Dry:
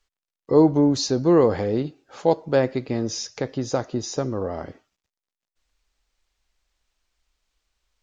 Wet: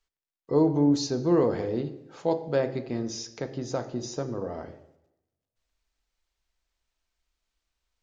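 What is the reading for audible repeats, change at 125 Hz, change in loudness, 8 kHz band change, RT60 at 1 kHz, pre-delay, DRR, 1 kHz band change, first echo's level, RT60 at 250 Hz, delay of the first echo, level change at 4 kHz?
no echo, -4.5 dB, -5.5 dB, no reading, 0.90 s, 3 ms, 8.0 dB, -6.5 dB, no echo, 0.85 s, no echo, -6.5 dB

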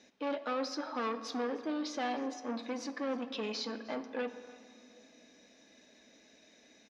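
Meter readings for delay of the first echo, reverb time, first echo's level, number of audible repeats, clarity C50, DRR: 307 ms, 2.4 s, -21.0 dB, 1, 11.0 dB, 9.5 dB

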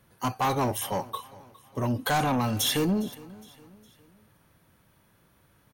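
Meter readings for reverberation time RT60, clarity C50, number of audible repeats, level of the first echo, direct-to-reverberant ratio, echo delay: no reverb, no reverb, 2, -21.0 dB, no reverb, 410 ms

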